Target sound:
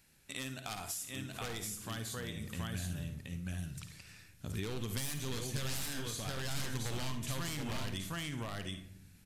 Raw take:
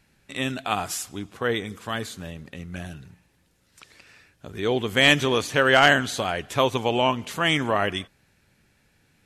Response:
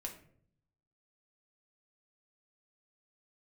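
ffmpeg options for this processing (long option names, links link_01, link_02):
-filter_complex "[0:a]asplit=2[link_01][link_02];[link_02]aecho=0:1:725:0.631[link_03];[link_01][link_03]amix=inputs=2:normalize=0,aeval=exprs='0.126*(abs(mod(val(0)/0.126+3,4)-2)-1)':channel_layout=same,aresample=32000,aresample=44100,crystalizer=i=2.5:c=0,asplit=2[link_04][link_05];[1:a]atrim=start_sample=2205,adelay=53[link_06];[link_05][link_06]afir=irnorm=-1:irlink=0,volume=-7dB[link_07];[link_04][link_07]amix=inputs=2:normalize=0,acompressor=threshold=-31dB:ratio=6,asubboost=boost=4:cutoff=230,volume=-8dB"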